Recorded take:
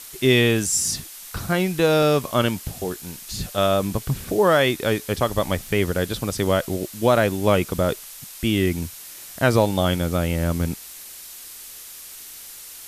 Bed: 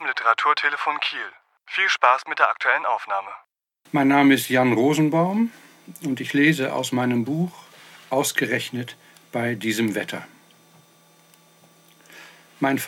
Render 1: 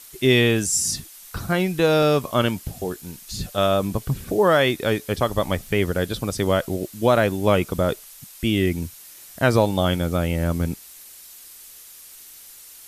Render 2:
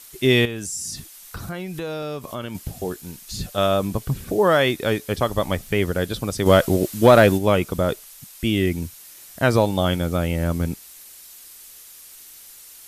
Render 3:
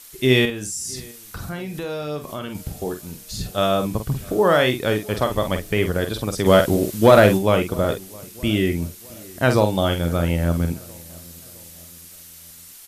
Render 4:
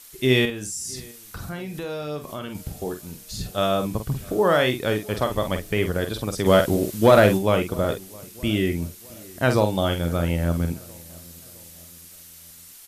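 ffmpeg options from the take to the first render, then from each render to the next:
-af "afftdn=nr=6:nf=-40"
-filter_complex "[0:a]asettb=1/sr,asplit=3[a][b][c];[a]atrim=end=0.454[d];[b]atrim=start=0.45:end=2.55,asetpts=PTS-STARTPTS,afade=t=in:d=0.004:c=qsin,afade=t=out:st=2.096:d=0.004:c=qsin,acompressor=threshold=-29dB:ratio=3:attack=3.2:release=140:knee=1:detection=peak[e];[c]atrim=start=2.546[f];[d][e]acrossfade=d=0.004:c1=hsin:c2=qsin[g];[g][f]acrossfade=d=0.004:c1=qsin:c2=hsin,asplit=3[h][i][j];[h]afade=t=out:st=6.45:d=0.02[k];[i]acontrast=84,afade=t=in:st=6.45:d=0.02,afade=t=out:st=7.37:d=0.02[l];[j]afade=t=in:st=7.37:d=0.02[m];[k][l][m]amix=inputs=3:normalize=0"
-filter_complex "[0:a]asplit=2[a][b];[b]adelay=47,volume=-7.5dB[c];[a][c]amix=inputs=2:normalize=0,asplit=2[d][e];[e]adelay=662,lowpass=f=1.8k:p=1,volume=-23dB,asplit=2[f][g];[g]adelay=662,lowpass=f=1.8k:p=1,volume=0.5,asplit=2[h][i];[i]adelay=662,lowpass=f=1.8k:p=1,volume=0.5[j];[d][f][h][j]amix=inputs=4:normalize=0"
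-af "volume=-2.5dB"

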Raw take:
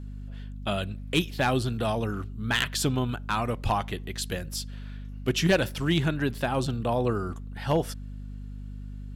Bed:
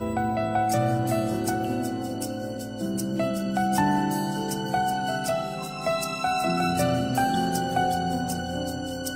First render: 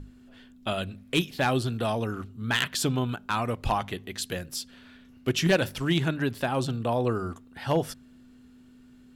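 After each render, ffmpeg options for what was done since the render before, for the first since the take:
-af "bandreject=f=50:t=h:w=6,bandreject=f=100:t=h:w=6,bandreject=f=150:t=h:w=6,bandreject=f=200:t=h:w=6"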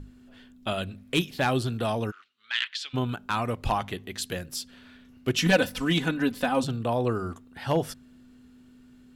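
-filter_complex "[0:a]asplit=3[a][b][c];[a]afade=t=out:st=2.1:d=0.02[d];[b]asuperpass=centerf=2900:order=4:qfactor=1,afade=t=in:st=2.1:d=0.02,afade=t=out:st=2.93:d=0.02[e];[c]afade=t=in:st=2.93:d=0.02[f];[d][e][f]amix=inputs=3:normalize=0,asettb=1/sr,asplit=3[g][h][i];[g]atrim=end=5.384[j];[h]atrim=start=5.38:end=6.64,asetpts=PTS-STARTPTS,afade=t=in:d=0.004:c=qsin,afade=t=out:st=1.256:d=0.004:c=qsin,aecho=1:1:4:0.82,atrim=end_sample=55566[k];[i]atrim=start=6.636[l];[j][k]acrossfade=d=0.004:c1=hsin:c2=qsin[m];[m][l]acrossfade=d=0.004:c1=qsin:c2=hsin"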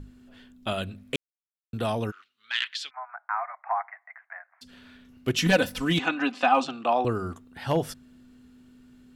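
-filter_complex "[0:a]asplit=3[a][b][c];[a]afade=t=out:st=2.89:d=0.02[d];[b]asuperpass=centerf=1200:order=20:qfactor=0.8,afade=t=in:st=2.89:d=0.02,afade=t=out:st=4.61:d=0.02[e];[c]afade=t=in:st=4.61:d=0.02[f];[d][e][f]amix=inputs=3:normalize=0,asettb=1/sr,asplit=3[g][h][i];[g]atrim=end=5.994[j];[h]atrim=start=5.99:end=7.05,asetpts=PTS-STARTPTS,afade=t=in:d=0.004:c=qsin,afade=t=out:st=1.056:d=0.004:c=qsin,highpass=f=250:w=0.5412,highpass=f=250:w=1.3066,equalizer=f=440:t=q:w=4:g=-8,equalizer=f=760:t=q:w=4:g=10,equalizer=f=1.2k:t=q:w=4:g=9,equalizer=f=2.6k:t=q:w=4:g=9,lowpass=f=6.9k:w=0.5412,lowpass=f=6.9k:w=1.3066[k];[i]atrim=start=7.046[l];[j][k]acrossfade=d=0.004:c1=hsin:c2=qsin[m];[m][l]acrossfade=d=0.004:c1=qsin:c2=hsin,asplit=3[n][o][p];[n]atrim=end=1.16,asetpts=PTS-STARTPTS,afade=t=out:st=1.156:d=0.004:c=hsin[q];[o]atrim=start=1.16:end=1.73,asetpts=PTS-STARTPTS,volume=0[r];[p]atrim=start=1.73,asetpts=PTS-STARTPTS,afade=t=in:d=0.004:c=hsin[s];[q][r][s]concat=n=3:v=0:a=1"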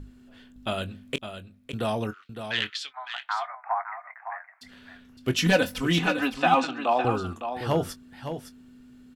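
-filter_complex "[0:a]asplit=2[a][b];[b]adelay=23,volume=-13dB[c];[a][c]amix=inputs=2:normalize=0,asplit=2[d][e];[e]aecho=0:1:560:0.355[f];[d][f]amix=inputs=2:normalize=0"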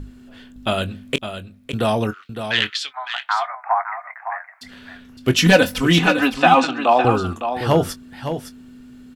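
-af "volume=8.5dB,alimiter=limit=-1dB:level=0:latency=1"

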